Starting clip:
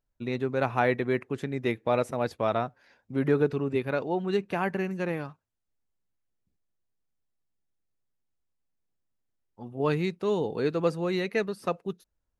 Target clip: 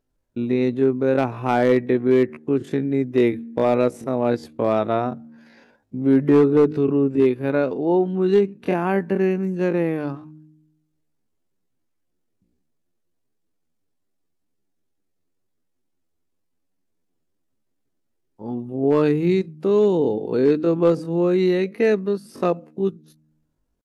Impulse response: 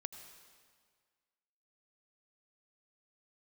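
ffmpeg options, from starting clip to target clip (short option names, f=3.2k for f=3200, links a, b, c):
-filter_complex "[0:a]equalizer=f=300:w=0.8:g=10.5,bandreject=f=77.03:t=h:w=4,bandreject=f=154.06:t=h:w=4,bandreject=f=231.09:t=h:w=4,bandreject=f=308.12:t=h:w=4,asplit=2[a][b];[b]acompressor=threshold=-32dB:ratio=6,volume=0dB[c];[a][c]amix=inputs=2:normalize=0,atempo=0.52,volume=9dB,asoftclip=hard,volume=-9dB,aresample=32000,aresample=44100"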